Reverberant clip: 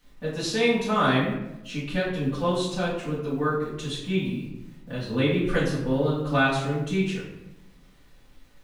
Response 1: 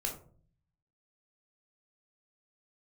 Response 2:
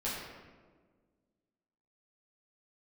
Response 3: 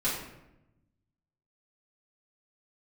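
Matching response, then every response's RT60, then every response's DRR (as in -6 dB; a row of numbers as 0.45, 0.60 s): 3; 0.45, 1.5, 0.90 s; 0.0, -9.0, -10.5 dB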